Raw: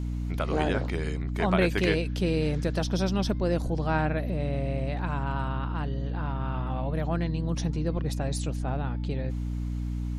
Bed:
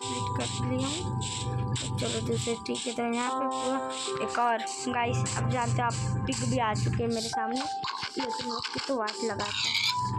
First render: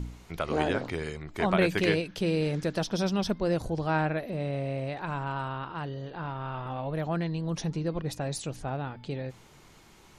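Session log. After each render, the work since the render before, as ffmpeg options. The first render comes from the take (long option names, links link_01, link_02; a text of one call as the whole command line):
ffmpeg -i in.wav -af "bandreject=frequency=60:width_type=h:width=4,bandreject=frequency=120:width_type=h:width=4,bandreject=frequency=180:width_type=h:width=4,bandreject=frequency=240:width_type=h:width=4,bandreject=frequency=300:width_type=h:width=4" out.wav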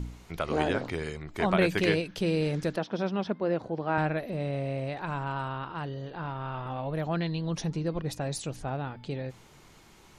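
ffmpeg -i in.wav -filter_complex "[0:a]asettb=1/sr,asplit=3[link_01][link_02][link_03];[link_01]atrim=end=2.764[link_04];[link_02]atrim=start=2.76:end=3.98,asetpts=PTS-STARTPTS,afade=type=in:duration=0.004:curve=qsin,afade=type=out:start_time=1.216:duration=0.004:curve=qsin,highpass=200,lowpass=2500[link_05];[link_03]atrim=start=3.976[link_06];[link_04][link_05]acrossfade=duration=0.004:curve1=hsin:curve2=qsin[link_07];[link_07][link_06]acrossfade=duration=0.004:curve1=qsin:curve2=hsin,asettb=1/sr,asplit=3[link_08][link_09][link_10];[link_08]atrim=end=7.134[link_11];[link_09]atrim=start=7.13:end=7.54,asetpts=PTS-STARTPTS,afade=type=in:duration=0.004:curve=qsin,afade=type=out:start_time=0.406:duration=0.004:curve=qsin,lowpass=frequency=3900:width_type=q:width=2.3[link_12];[link_10]atrim=start=7.536[link_13];[link_11][link_12]acrossfade=duration=0.004:curve1=hsin:curve2=qsin[link_14];[link_14][link_13]acrossfade=duration=0.004:curve1=qsin:curve2=hsin" out.wav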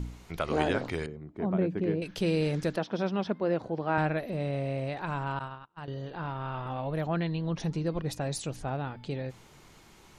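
ffmpeg -i in.wav -filter_complex "[0:a]asettb=1/sr,asplit=3[link_01][link_02][link_03];[link_01]atrim=end=1.064[link_04];[link_02]atrim=start=1.06:end=2.02,asetpts=PTS-STARTPTS,afade=type=in:duration=0.004:curve=qsin,afade=type=out:start_time=0.956:duration=0.004:curve=qsin,bandpass=frequency=230:width_type=q:width=0.96[link_05];[link_03]atrim=start=2.016[link_06];[link_04][link_05]acrossfade=duration=0.004:curve1=hsin:curve2=qsin[link_07];[link_07][link_06]acrossfade=duration=0.004:curve1=qsin:curve2=hsin,asettb=1/sr,asplit=3[link_08][link_09][link_10];[link_08]atrim=end=5.394[link_11];[link_09]atrim=start=5.39:end=5.88,asetpts=PTS-STARTPTS,afade=type=in:duration=0.004:curve=qsin,afade=type=out:start_time=0.486:duration=0.004:curve=qsin,agate=range=-35dB:threshold=-34dB:ratio=16:release=100:detection=peak[link_12];[link_10]atrim=start=5.876[link_13];[link_11][link_12]acrossfade=duration=0.004:curve1=hsin:curve2=qsin[link_14];[link_14][link_13]acrossfade=duration=0.004:curve1=qsin:curve2=hsin,asplit=3[link_15][link_16][link_17];[link_15]afade=type=out:start_time=7.06:duration=0.02[link_18];[link_16]lowpass=3200,afade=type=in:start_time=7.06:duration=0.02,afade=type=out:start_time=7.59:duration=0.02[link_19];[link_17]afade=type=in:start_time=7.59:duration=0.02[link_20];[link_18][link_19][link_20]amix=inputs=3:normalize=0" out.wav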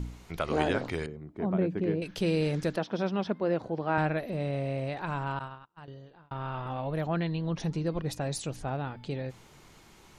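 ffmpeg -i in.wav -filter_complex "[0:a]asplit=2[link_01][link_02];[link_01]atrim=end=6.31,asetpts=PTS-STARTPTS,afade=type=out:start_time=5.31:duration=1[link_03];[link_02]atrim=start=6.31,asetpts=PTS-STARTPTS,afade=type=in:duration=0.004:curve=hsin[link_04];[link_03][link_04]concat=n=2:v=0:a=1" out.wav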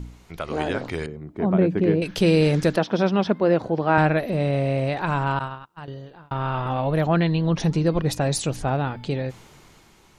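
ffmpeg -i in.wav -af "dynaudnorm=framelen=310:gausssize=7:maxgain=10dB" out.wav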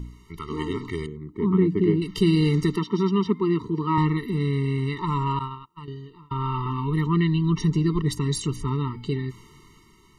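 ffmpeg -i in.wav -af "afftfilt=real='re*eq(mod(floor(b*sr/1024/450),2),0)':imag='im*eq(mod(floor(b*sr/1024/450),2),0)':win_size=1024:overlap=0.75" out.wav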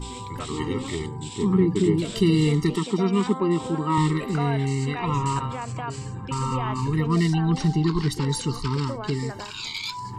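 ffmpeg -i in.wav -i bed.wav -filter_complex "[1:a]volume=-4.5dB[link_01];[0:a][link_01]amix=inputs=2:normalize=0" out.wav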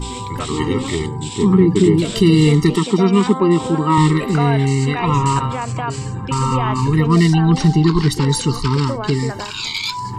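ffmpeg -i in.wav -af "volume=8.5dB,alimiter=limit=-3dB:level=0:latency=1" out.wav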